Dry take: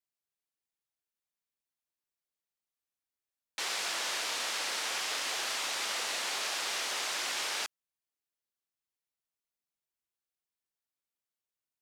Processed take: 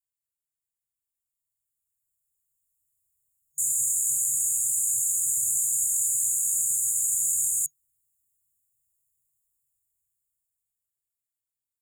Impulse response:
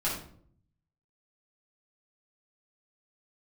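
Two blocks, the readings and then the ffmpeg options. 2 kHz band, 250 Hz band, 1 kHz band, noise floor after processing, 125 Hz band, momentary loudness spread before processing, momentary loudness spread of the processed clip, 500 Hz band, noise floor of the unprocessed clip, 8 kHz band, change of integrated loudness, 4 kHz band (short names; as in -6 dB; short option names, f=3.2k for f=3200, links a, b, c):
under -40 dB, under -10 dB, under -40 dB, under -85 dBFS, n/a, 2 LU, 3 LU, under -40 dB, under -85 dBFS, +16.0 dB, +10.0 dB, under -40 dB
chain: -af "afftfilt=real='re*(1-between(b*sr/4096,140,6700))':imag='im*(1-between(b*sr/4096,140,6700))':win_size=4096:overlap=0.75,dynaudnorm=f=270:g=17:m=16dB,volume=3dB"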